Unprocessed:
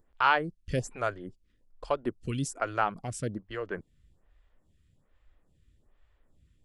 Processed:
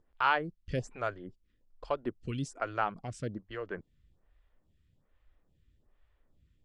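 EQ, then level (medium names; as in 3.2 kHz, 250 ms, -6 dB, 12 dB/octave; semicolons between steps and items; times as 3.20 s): low-pass 5.5 kHz 12 dB/octave; -3.5 dB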